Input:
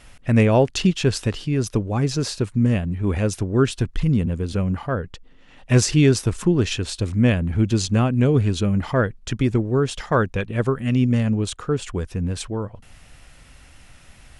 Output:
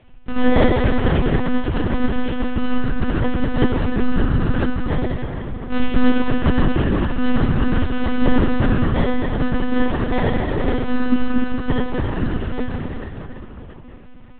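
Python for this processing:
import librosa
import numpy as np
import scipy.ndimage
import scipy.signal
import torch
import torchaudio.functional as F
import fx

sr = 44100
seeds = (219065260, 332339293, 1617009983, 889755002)

y = fx.bit_reversed(x, sr, seeds[0], block=32)
y = fx.high_shelf(y, sr, hz=2900.0, db=-4.5)
y = fx.rev_plate(y, sr, seeds[1], rt60_s=4.0, hf_ratio=0.75, predelay_ms=0, drr_db=-4.5)
y = fx.lpc_monotone(y, sr, seeds[2], pitch_hz=250.0, order=10)
y = y * 10.0 ** (-1.0 / 20.0)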